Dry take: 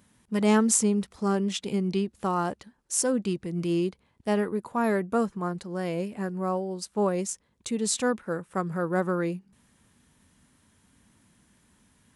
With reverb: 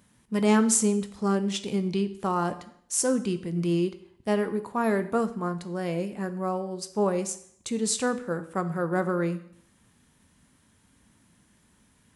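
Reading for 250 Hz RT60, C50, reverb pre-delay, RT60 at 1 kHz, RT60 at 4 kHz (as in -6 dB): 0.60 s, 14.0 dB, 12 ms, 0.65 s, 0.60 s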